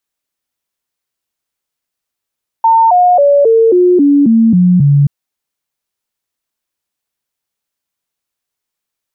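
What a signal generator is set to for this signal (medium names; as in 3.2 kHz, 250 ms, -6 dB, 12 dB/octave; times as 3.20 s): stepped sine 905 Hz down, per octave 3, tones 9, 0.27 s, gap 0.00 s -4.5 dBFS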